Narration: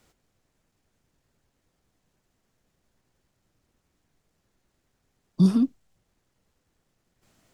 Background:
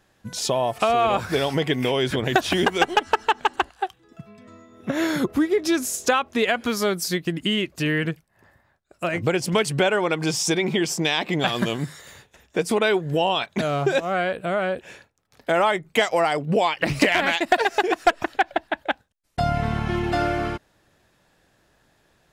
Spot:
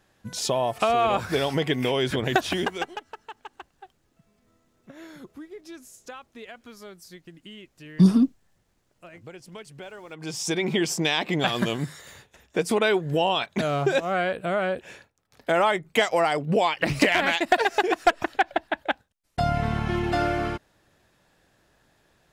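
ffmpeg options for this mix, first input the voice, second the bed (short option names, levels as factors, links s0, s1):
-filter_complex "[0:a]adelay=2600,volume=1.33[s0];[1:a]volume=7.5,afade=t=out:st=2.32:d=0.72:silence=0.112202,afade=t=in:st=10.09:d=0.64:silence=0.105925[s1];[s0][s1]amix=inputs=2:normalize=0"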